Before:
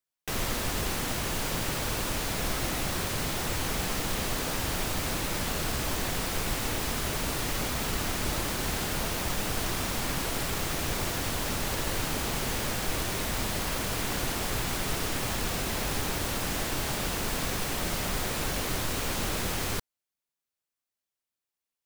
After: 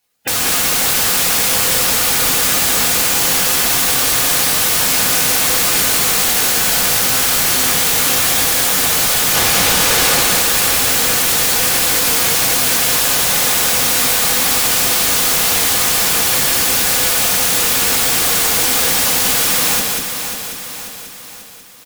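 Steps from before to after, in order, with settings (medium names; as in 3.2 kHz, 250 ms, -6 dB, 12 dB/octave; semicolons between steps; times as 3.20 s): spectral gate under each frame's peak -10 dB weak; 9.34–10.23 s: tilt EQ -2 dB/octave; in parallel at +3 dB: peak limiter -26 dBFS, peak gain reduction 6.5 dB; on the sum: sine folder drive 19 dB, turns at -14 dBFS; delay 191 ms -3.5 dB; on a send at -4 dB: reverberation, pre-delay 3 ms; on the sum: bit-crushed delay 540 ms, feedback 55%, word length 7-bit, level -8 dB; trim +1 dB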